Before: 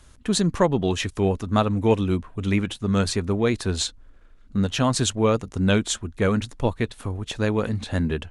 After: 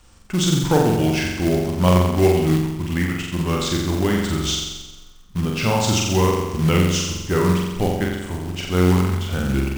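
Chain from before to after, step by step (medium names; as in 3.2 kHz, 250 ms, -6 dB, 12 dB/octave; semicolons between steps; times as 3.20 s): tape speed -15%; flutter echo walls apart 7.6 m, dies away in 1.1 s; short-mantissa float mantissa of 2-bit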